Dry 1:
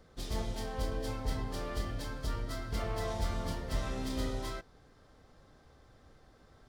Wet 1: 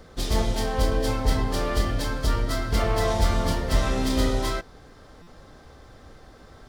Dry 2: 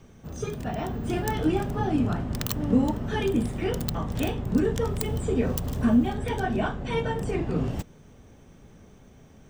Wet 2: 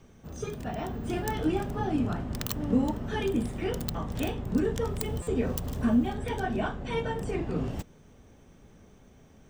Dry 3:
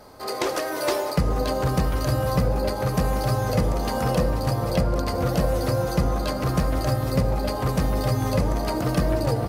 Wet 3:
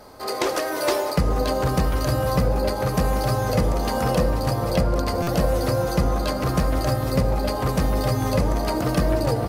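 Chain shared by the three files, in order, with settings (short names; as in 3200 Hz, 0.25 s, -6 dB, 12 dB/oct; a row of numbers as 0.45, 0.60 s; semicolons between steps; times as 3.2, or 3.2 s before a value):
bell 130 Hz -2.5 dB 0.88 oct; stuck buffer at 5.22, samples 256, times 8; normalise peaks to -9 dBFS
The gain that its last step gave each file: +12.5, -3.0, +2.0 dB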